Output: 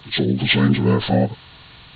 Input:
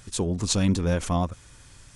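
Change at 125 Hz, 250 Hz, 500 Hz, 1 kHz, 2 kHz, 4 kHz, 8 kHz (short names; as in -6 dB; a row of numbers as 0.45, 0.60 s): +6.5 dB, +7.5 dB, +7.5 dB, +5.5 dB, +14.5 dB, +10.5 dB, under -40 dB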